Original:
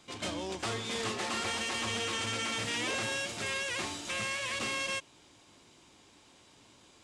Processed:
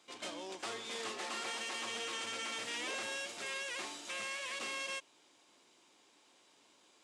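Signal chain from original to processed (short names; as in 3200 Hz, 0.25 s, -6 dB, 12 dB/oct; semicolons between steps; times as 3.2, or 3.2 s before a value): HPF 320 Hz 12 dB/oct; gain -6 dB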